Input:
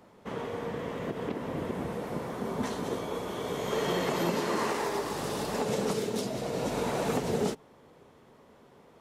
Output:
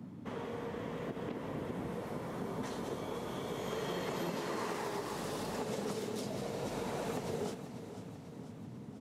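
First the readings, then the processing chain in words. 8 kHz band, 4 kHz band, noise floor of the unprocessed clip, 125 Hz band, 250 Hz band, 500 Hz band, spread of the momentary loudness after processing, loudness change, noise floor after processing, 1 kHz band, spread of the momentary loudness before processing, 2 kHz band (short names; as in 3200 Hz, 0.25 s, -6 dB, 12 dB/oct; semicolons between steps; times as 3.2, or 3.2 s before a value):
-7.5 dB, -7.5 dB, -58 dBFS, -5.5 dB, -6.5 dB, -7.5 dB, 9 LU, -7.5 dB, -48 dBFS, -7.5 dB, 6 LU, -7.5 dB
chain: band noise 100–280 Hz -44 dBFS; compressor 2:1, threshold -33 dBFS, peak gain reduction 5.5 dB; feedback echo 0.492 s, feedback 59%, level -12.5 dB; gain -4.5 dB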